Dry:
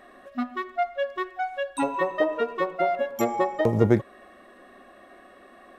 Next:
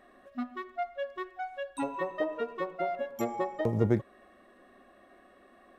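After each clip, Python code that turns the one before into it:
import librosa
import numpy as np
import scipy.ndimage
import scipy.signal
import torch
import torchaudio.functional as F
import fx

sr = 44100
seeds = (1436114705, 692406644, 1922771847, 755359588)

y = fx.low_shelf(x, sr, hz=320.0, db=4.5)
y = F.gain(torch.from_numpy(y), -9.0).numpy()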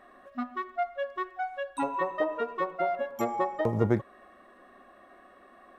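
y = fx.peak_eq(x, sr, hz=1100.0, db=7.0, octaves=1.4)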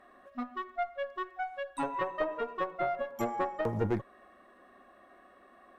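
y = fx.tube_stage(x, sr, drive_db=18.0, bias=0.65)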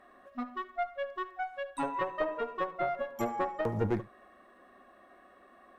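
y = x + 10.0 ** (-17.5 / 20.0) * np.pad(x, (int(72 * sr / 1000.0), 0))[:len(x)]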